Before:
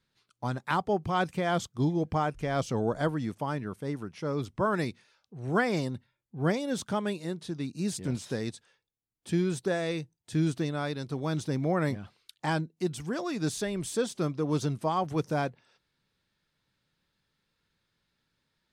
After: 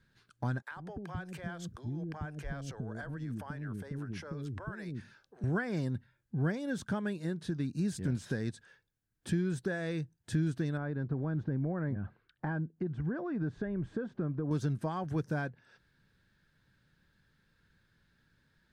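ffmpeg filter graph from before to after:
-filter_complex "[0:a]asettb=1/sr,asplit=3[a][b][c];[a]atrim=end=0.624[d];[b]atrim=start=0.62:end=5.44,asetpts=PTS-STARTPTS,afade=t=in:d=0.004:c=qsin,afade=t=out:st=4.816:d=0.004:c=qsin,acompressor=threshold=-41dB:ratio=16:attack=3.2:release=140:knee=1:detection=peak,acrossover=split=420[e][f];[e]adelay=90[g];[g][f]amix=inputs=2:normalize=0,atrim=end_sample=212562[h];[c]atrim=start=5.436[i];[d][h]acrossfade=d=0.004:c1=hsin:c2=qsin[j];[j][i]acrossfade=d=0.004:c1=qsin:c2=hsin,asettb=1/sr,asplit=3[k][l][m];[k]atrim=end=10.774[n];[l]atrim=start=10.77:end=14.51,asetpts=PTS-STARTPTS,afade=t=in:d=0.004:c=qsin,afade=t=out:st=3.736:d=0.004:c=qsin,lowpass=1.3k,acompressor=threshold=-32dB:ratio=2:attack=3.2:release=140:knee=1:detection=peak[o];[m]atrim=start=14.506[p];[n][o]acrossfade=d=0.004:c1=hsin:c2=qsin[q];[q][p]acrossfade=d=0.004:c1=qsin:c2=hsin,equalizer=f=1.6k:t=o:w=0.32:g=13.5,acompressor=threshold=-42dB:ratio=2.5,lowshelf=f=320:g=12"

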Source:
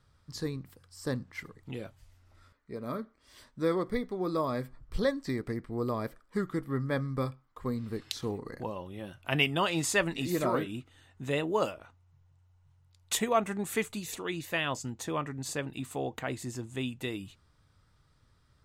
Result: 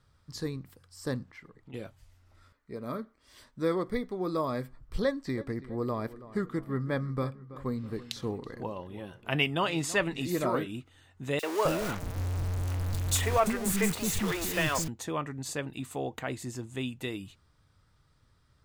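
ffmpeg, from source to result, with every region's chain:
-filter_complex "[0:a]asettb=1/sr,asplit=3[a][b][c];[a]atrim=end=1.314[d];[b]atrim=start=1.31:end=1.74,asetpts=PTS-STARTPTS,afade=t=in:d=0.004:c=qsin,afade=t=out:st=0.426:d=0.004:c=qsin,lowpass=f=2.7k:p=1,equalizer=f=74:w=2.2:g=-13,acompressor=threshold=-50dB:ratio=2:attack=3.2:release=140:knee=1:detection=peak[e];[c]atrim=start=1.736[f];[d][e]acrossfade=d=0.004:c1=hsin:c2=qsin[g];[g][f]acrossfade=d=0.004:c1=qsin:c2=hsin,asettb=1/sr,asplit=3[h][i][j];[h]atrim=end=5.024[k];[i]atrim=start=5.02:end=10.21,asetpts=PTS-STARTPTS,afade=t=in:d=0.004:c=qsin,afade=t=out:st=5.186:d=0.004:c=qsin,highshelf=f=5.1k:g=-5,asplit=2[l][m];[m]adelay=328,lowpass=f=2.4k:p=1,volume=-16dB,asplit=2[n][o];[o]adelay=328,lowpass=f=2.4k:p=1,volume=0.52,asplit=2[p][q];[q]adelay=328,lowpass=f=2.4k:p=1,volume=0.52,asplit=2[r][s];[s]adelay=328,lowpass=f=2.4k:p=1,volume=0.52,asplit=2[t][u];[u]adelay=328,lowpass=f=2.4k:p=1,volume=0.52[v];[l][n][p][r][t][v]amix=inputs=6:normalize=0,atrim=end_sample=228879[w];[j]atrim=start=10.206[x];[k][w]acrossfade=d=0.004:c1=hsin:c2=qsin[y];[y][x]acrossfade=d=0.004:c1=qsin:c2=hsin,asettb=1/sr,asplit=3[z][aa][ab];[z]atrim=end=11.394[ac];[aa]atrim=start=11.39:end=14.88,asetpts=PTS-STARTPTS,afade=t=in:d=0.004:c=qsin,afade=t=out:st=3.486:d=0.004:c=qsin,aeval=exprs='val(0)+0.5*0.0355*sgn(val(0))':c=same,lowshelf=f=77:g=11.5,acrossover=split=340|3300[ad][ae][af];[ae]adelay=40[ag];[ad]adelay=260[ah];[ah][ag][af]amix=inputs=3:normalize=0,atrim=end_sample=153909[ai];[ab]atrim=start=14.876[aj];[ac][ai]acrossfade=d=0.004:c1=hsin:c2=qsin[ak];[ak][aj]acrossfade=d=0.004:c1=qsin:c2=hsin"

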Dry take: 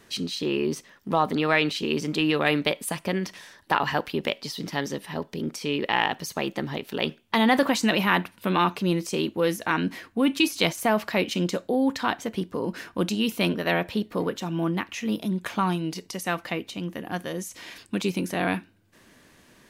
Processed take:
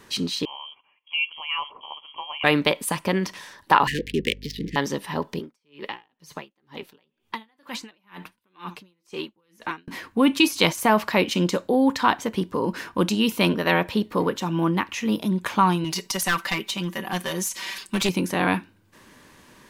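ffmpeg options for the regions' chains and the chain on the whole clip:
-filter_complex "[0:a]asettb=1/sr,asplit=3[a][b][c];[a]atrim=end=0.454[d];[b]atrim=start=0.45:end=2.44,asetpts=PTS-STARTPTS,afade=t=in:d=0.004:c=qsin,afade=t=out:st=1.986:d=0.004:c=qsin,asplit=3[e][f][g];[e]bandpass=f=730:t=q:w=8,volume=0dB[h];[f]bandpass=f=1.09k:t=q:w=8,volume=-6dB[i];[g]bandpass=f=2.44k:t=q:w=8,volume=-9dB[j];[h][i][j]amix=inputs=3:normalize=0,bandreject=f=1.7k:w=25,lowpass=f=3k:t=q:w=0.5098,lowpass=f=3k:t=q:w=0.6013,lowpass=f=3k:t=q:w=0.9,lowpass=f=3k:t=q:w=2.563,afreqshift=-3500[k];[c]atrim=start=2.436[l];[d][k]acrossfade=d=0.004:c1=hsin:c2=qsin[m];[m][l]acrossfade=d=0.004:c1=qsin:c2=hsin,asettb=1/sr,asplit=3[n][o][p];[n]atrim=end=3.874[q];[o]atrim=start=3.87:end=4.76,asetpts=PTS-STARTPTS,afade=t=in:d=0.004:c=qsin,afade=t=out:st=0.886:d=0.004:c=qsin,adynamicsmooth=sensitivity=8:basefreq=770,aeval=exprs='val(0)+0.00562*(sin(2*PI*50*n/s)+sin(2*PI*2*50*n/s)/2+sin(2*PI*3*50*n/s)/3+sin(2*PI*4*50*n/s)/4+sin(2*PI*5*50*n/s)/5)':c=same,asuperstop=centerf=930:order=20:qfactor=0.76[r];[p]atrim=start=4.756[s];[q][r]acrossfade=d=0.004:c1=hsin:c2=qsin[t];[t][s]acrossfade=d=0.004:c1=qsin:c2=hsin,asettb=1/sr,asplit=3[u][v][w];[u]atrim=end=5.394[x];[v]atrim=start=5.39:end=9.88,asetpts=PTS-STARTPTS,afade=t=in:d=0.004:c=qsin,afade=t=out:st=4.486:d=0.004:c=qsin,flanger=delay=2.4:depth=4.4:regen=49:speed=1.6:shape=sinusoidal,acrossover=split=570|1400|3900[y][z][aa][ab];[y]acompressor=threshold=-36dB:ratio=3[ac];[z]acompressor=threshold=-43dB:ratio=3[ad];[aa]acompressor=threshold=-35dB:ratio=3[ae];[ab]acompressor=threshold=-47dB:ratio=3[af];[ac][ad][ae][af]amix=inputs=4:normalize=0,aeval=exprs='val(0)*pow(10,-39*(0.5-0.5*cos(2*PI*2.1*n/s))/20)':c=same[ag];[w]atrim=start=9.876[ah];[x][ag]acrossfade=d=0.004:c1=hsin:c2=qsin[ai];[ai][ah]acrossfade=d=0.004:c1=qsin:c2=hsin,asettb=1/sr,asplit=3[aj][ak][al];[aj]atrim=end=15.844[am];[ak]atrim=start=15.84:end=18.09,asetpts=PTS-STARTPTS,afade=t=in:d=0.004:c=qsin,afade=t=out:st=2.246:d=0.004:c=qsin,tiltshelf=f=1.1k:g=-5,aecho=1:1:5.2:0.84,atrim=end_sample=99225,aeval=exprs='clip(val(0),-1,0.0562)':c=same[an];[al]atrim=start=18.086[ao];[am][an]acrossfade=d=0.004:c1=hsin:c2=qsin[ap];[ap][ao]acrossfade=d=0.004:c1=qsin:c2=hsin,equalizer=f=1k:w=3.2:g=6,bandreject=f=680:w=12,volume=3.5dB"

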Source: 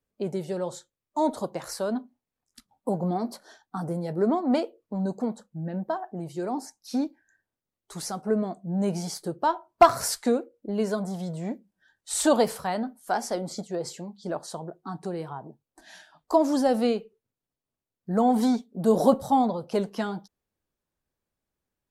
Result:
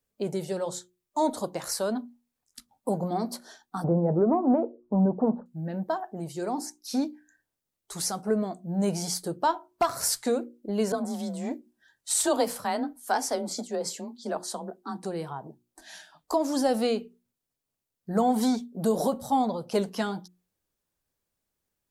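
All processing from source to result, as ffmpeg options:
-filter_complex "[0:a]asettb=1/sr,asplit=3[a][b][c];[a]atrim=end=3.844[d];[b]atrim=start=3.84:end=5.46,asetpts=PTS-STARTPTS,afade=t=in:d=0.004:c=qsin,afade=t=out:st=1.616:d=0.004:c=qsin,lowpass=f=1.1k:w=0.5412,lowpass=f=1.1k:w=1.3066,acontrast=86[e];[c]atrim=start=5.456[f];[d][e]acrossfade=d=0.004:c1=hsin:c2=qsin[g];[g][f]acrossfade=d=0.004:c1=qsin:c2=hsin,asettb=1/sr,asplit=3[h][i][j];[h]atrim=end=10.924[k];[i]atrim=start=10.92:end=15.04,asetpts=PTS-STARTPTS,afade=t=in:d=0.004:c=qsin,afade=t=out:st=4.116:d=0.004:c=qsin,afreqshift=29,adynamicequalizer=threshold=0.0126:dfrequency=1700:dqfactor=0.7:tfrequency=1700:tqfactor=0.7:attack=5:release=100:ratio=0.375:range=2:mode=cutabove:tftype=highshelf[l];[j]atrim=start=15.036[m];[k][l]acrossfade=d=0.004:c1=hsin:c2=qsin[n];[n][m]acrossfade=d=0.004:c1=qsin:c2=hsin,highshelf=f=3.8k:g=7.5,bandreject=f=60:t=h:w=6,bandreject=f=120:t=h:w=6,bandreject=f=180:t=h:w=6,bandreject=f=240:t=h:w=6,bandreject=f=300:t=h:w=6,bandreject=f=360:t=h:w=6,alimiter=limit=-14.5dB:level=0:latency=1:release=438"

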